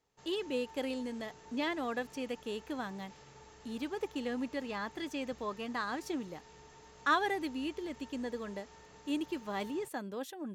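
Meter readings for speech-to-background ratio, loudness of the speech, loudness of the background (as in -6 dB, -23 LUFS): 18.5 dB, -37.5 LUFS, -56.0 LUFS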